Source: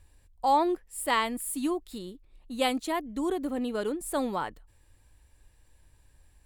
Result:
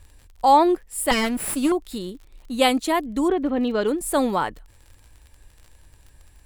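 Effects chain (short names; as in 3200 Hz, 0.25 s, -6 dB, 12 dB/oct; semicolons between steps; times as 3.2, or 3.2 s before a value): 1.11–1.72 minimum comb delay 0.38 ms; 3.27–3.87 LPF 2800 Hz -> 6000 Hz 24 dB/oct; crackle 47/s -47 dBFS; gain +8.5 dB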